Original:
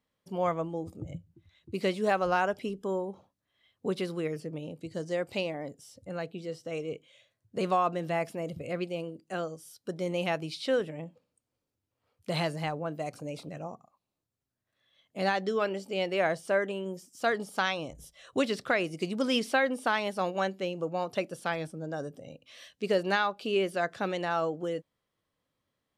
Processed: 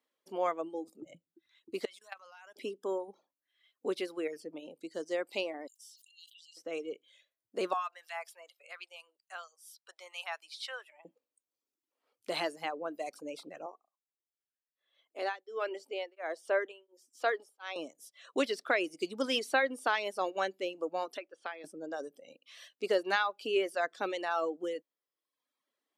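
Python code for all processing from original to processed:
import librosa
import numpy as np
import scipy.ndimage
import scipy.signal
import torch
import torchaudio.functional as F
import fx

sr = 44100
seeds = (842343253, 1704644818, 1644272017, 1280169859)

y = fx.chain(x, sr, fx.tone_stack(knobs='10-0-10'),
    fx.level_steps(step_db=17), at=(1.85, 2.56))
y = fx.chain(y, sr, fx.brickwall_highpass(low_hz=2700.0),
    fx.sustainer(db_per_s=47.0), at=(5.67, 6.57))
y = fx.chain(y, sr, fx.highpass(hz=880.0, slope=24),
    fx.harmonic_tremolo(hz=4.3, depth_pct=50, crossover_hz=1500.0), at=(7.73, 11.05))
y = fx.chain(y, sr, fx.highpass(hz=320.0, slope=24),
    fx.high_shelf(hz=4200.0, db=-7.5),
    fx.tremolo_abs(hz=1.4), at=(13.66, 17.76))
y = fx.chain(y, sr, fx.highpass(hz=1300.0, slope=6),
    fx.spacing_loss(db_at_10k=30),
    fx.band_squash(depth_pct=100), at=(21.17, 21.64))
y = scipy.signal.sosfilt(scipy.signal.cheby1(3, 1.0, 300.0, 'highpass', fs=sr, output='sos'), y)
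y = fx.dereverb_blind(y, sr, rt60_s=0.95)
y = y * 10.0 ** (-1.0 / 20.0)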